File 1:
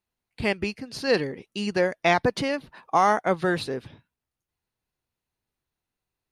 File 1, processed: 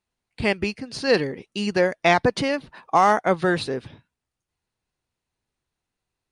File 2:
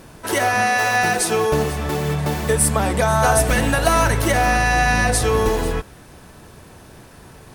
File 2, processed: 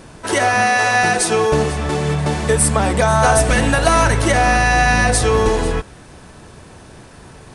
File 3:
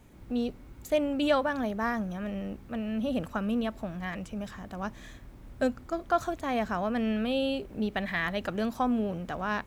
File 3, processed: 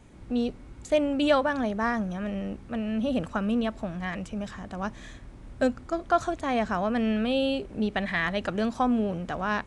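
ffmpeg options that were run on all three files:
ffmpeg -i in.wav -af "aeval=exprs='clip(val(0),-1,0.316)':channel_layout=same,aresample=22050,aresample=44100,volume=3dB" out.wav

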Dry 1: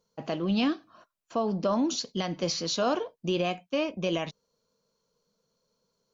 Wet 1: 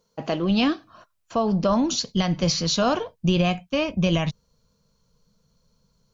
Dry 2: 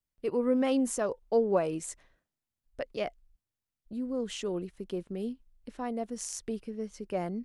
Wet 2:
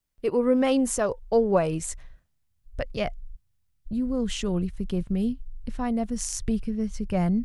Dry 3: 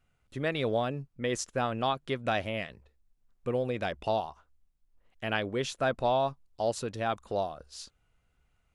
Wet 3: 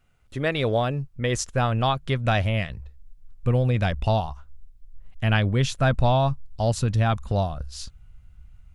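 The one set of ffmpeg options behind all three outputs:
ffmpeg -i in.wav -af "asubboost=boost=10.5:cutoff=120,volume=6.5dB" out.wav

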